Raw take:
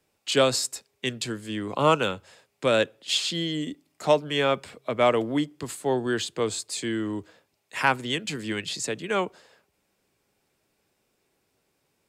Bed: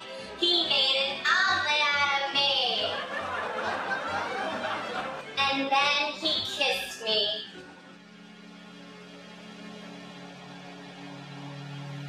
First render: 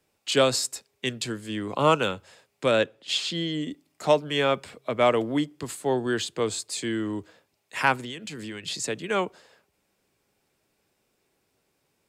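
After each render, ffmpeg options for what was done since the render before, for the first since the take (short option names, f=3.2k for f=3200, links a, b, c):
-filter_complex "[0:a]asettb=1/sr,asplit=3[a][b][c];[a]atrim=end=2.714[d];[b]atrim=start=2.71:end=3.71,asetpts=PTS-STARTPTS,afade=t=in:d=0.004:c=qsin,afade=t=out:st=0.996:d=0.004:c=qsin,highshelf=f=7.4k:g=-9.5[e];[c]atrim=start=3.706[f];[d][e]acrossfade=d=0.004:c1=hsin:c2=qsin[g];[g][f]acrossfade=d=0.004:c1=qsin:c2=hsin,asettb=1/sr,asplit=3[h][i][j];[h]atrim=end=8.044[k];[i]atrim=start=8.04:end=8.68,asetpts=PTS-STARTPTS,afade=t=in:d=0.004:c=qsin,afade=t=out:st=0.636:d=0.004:c=qsin,acompressor=threshold=-33dB:ratio=6:attack=3.2:release=140:knee=1:detection=peak[l];[j]atrim=start=8.676[m];[k][l]acrossfade=d=0.004:c1=hsin:c2=qsin[n];[n][m]acrossfade=d=0.004:c1=qsin:c2=hsin"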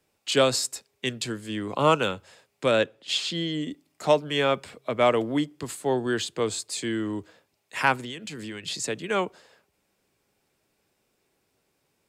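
-af anull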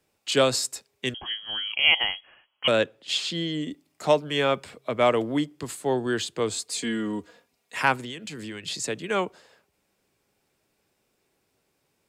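-filter_complex "[0:a]asettb=1/sr,asplit=3[a][b][c];[a]atrim=end=1.144[d];[b]atrim=start=1.14:end=2.68,asetpts=PTS-STARTPTS,afade=t=in:d=0.004:c=qsin,afade=t=out:st=1.536:d=0.004:c=qsin,lowpass=f=2.9k:t=q:w=0.5098,lowpass=f=2.9k:t=q:w=0.6013,lowpass=f=2.9k:t=q:w=0.9,lowpass=f=2.9k:t=q:w=2.563,afreqshift=-3400[e];[c]atrim=start=2.676[f];[d][e]acrossfade=d=0.004:c1=hsin:c2=qsin[g];[g][f]acrossfade=d=0.004:c1=qsin:c2=hsin,asettb=1/sr,asplit=3[h][i][j];[h]atrim=end=6.564[k];[i]atrim=start=6.56:end=7.76,asetpts=PTS-STARTPTS,afade=t=in:d=0.004:c=qsin,afade=t=out:st=1.196:d=0.004:c=qsin,aecho=1:1:4.2:0.65,atrim=end_sample=52920[l];[j]atrim=start=7.756[m];[k][l]acrossfade=d=0.004:c1=hsin:c2=qsin[n];[n][m]acrossfade=d=0.004:c1=qsin:c2=hsin"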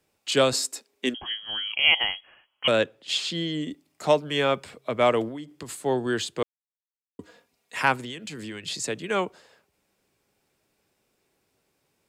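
-filter_complex "[0:a]asettb=1/sr,asplit=3[a][b][c];[a]atrim=end=0.534[d];[b]atrim=start=0.53:end=1.16,asetpts=PTS-STARTPTS,afade=t=in:d=0.004:c=qsin,afade=t=out:st=0.626:d=0.004:c=qsin,lowshelf=f=190:t=q:w=3:g=-9.5[e];[c]atrim=start=1.156[f];[d][e]acrossfade=d=0.004:c1=hsin:c2=qsin[g];[g][f]acrossfade=d=0.004:c1=qsin:c2=hsin,asettb=1/sr,asplit=3[h][i][j];[h]atrim=end=5.284[k];[i]atrim=start=5.28:end=5.71,asetpts=PTS-STARTPTS,afade=t=in:d=0.004:c=qsin,afade=t=out:st=0.426:d=0.004:c=qsin,acompressor=threshold=-33dB:ratio=10:attack=3.2:release=140:knee=1:detection=peak[l];[j]atrim=start=5.706[m];[k][l]acrossfade=d=0.004:c1=hsin:c2=qsin[n];[n][m]acrossfade=d=0.004:c1=qsin:c2=hsin,asplit=3[o][p][q];[o]atrim=end=6.43,asetpts=PTS-STARTPTS,afade=t=out:st=6.426:d=0.004:c=hsin[r];[p]atrim=start=6.43:end=7.19,asetpts=PTS-STARTPTS,volume=0[s];[q]atrim=start=7.19,asetpts=PTS-STARTPTS,afade=t=in:d=0.004:c=hsin[t];[r][s][t]concat=n=3:v=0:a=1"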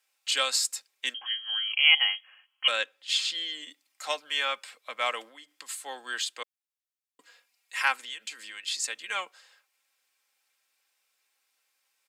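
-af "highpass=1.4k,aecho=1:1:3.8:0.47"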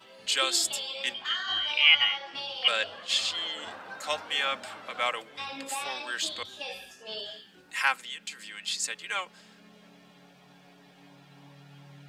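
-filter_complex "[1:a]volume=-12dB[a];[0:a][a]amix=inputs=2:normalize=0"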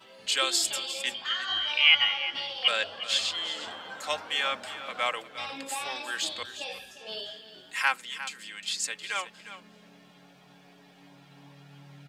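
-af "aecho=1:1:355:0.224"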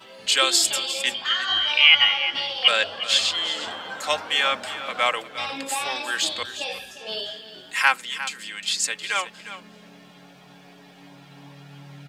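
-af "volume=7dB,alimiter=limit=-2dB:level=0:latency=1"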